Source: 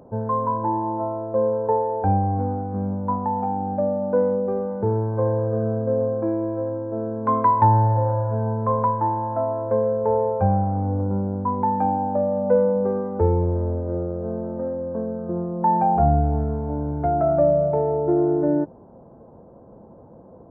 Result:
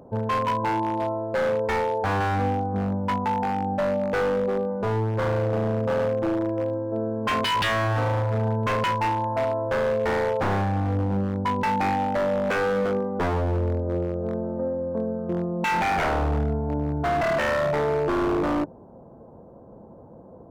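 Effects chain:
0:02.20–0:03.05: dynamic equaliser 1,000 Hz, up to +5 dB, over −38 dBFS, Q 0.94
wave folding −18.5 dBFS

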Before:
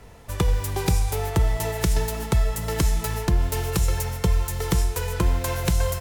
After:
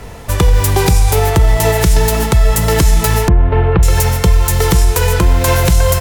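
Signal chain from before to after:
0:03.28–0:03.83: Gaussian smoothing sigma 4 samples
boost into a limiter +16.5 dB
level −1 dB

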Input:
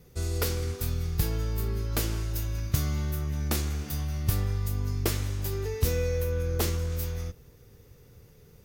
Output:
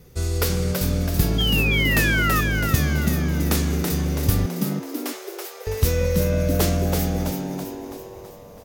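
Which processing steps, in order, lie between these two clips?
0:01.38–0:02.41: sound drawn into the spectrogram fall 1,200–3,300 Hz −30 dBFS
0:04.46–0:05.67: four-pole ladder high-pass 550 Hz, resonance 30%
echo with shifted repeats 329 ms, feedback 52%, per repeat +100 Hz, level −5 dB
level +6 dB

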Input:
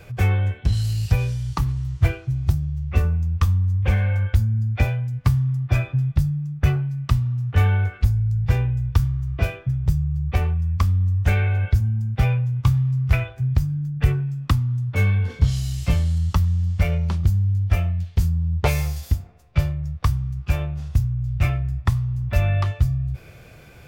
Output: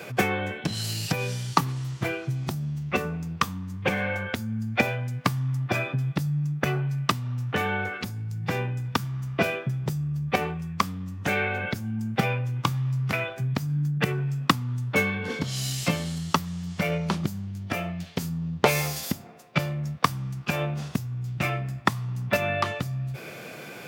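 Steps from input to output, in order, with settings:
downward compressor, threshold −21 dBFS, peak gain reduction 10.5 dB
high-pass filter 180 Hz 24 dB per octave
level +9 dB

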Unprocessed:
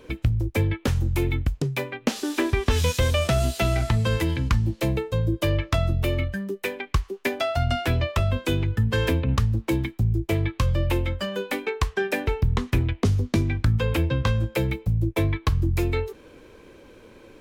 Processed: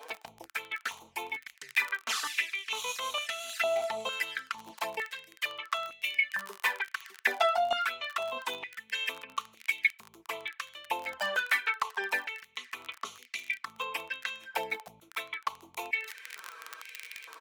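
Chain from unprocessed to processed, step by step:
on a send at −21 dB: convolution reverb, pre-delay 3 ms
on the sum: flanger swept by the level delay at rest 7.4 ms, full sweep at −19 dBFS
comb filter 4.5 ms, depth 51%
surface crackle 27 per second −29 dBFS
reversed playback
downward compressor 6 to 1, threshold −30 dBFS, peak gain reduction 14 dB
reversed playback
high-pass on a step sequencer 2.2 Hz 800–2,200 Hz
level +4.5 dB

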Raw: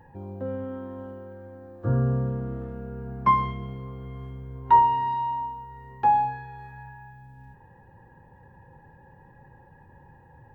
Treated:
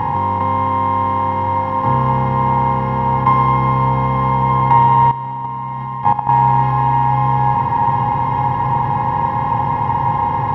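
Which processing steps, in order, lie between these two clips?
compressor on every frequency bin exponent 0.2
feedback delay with all-pass diffusion 1,304 ms, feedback 54%, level −8 dB
0:05.11–0:06.29: output level in coarse steps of 13 dB
level +2 dB

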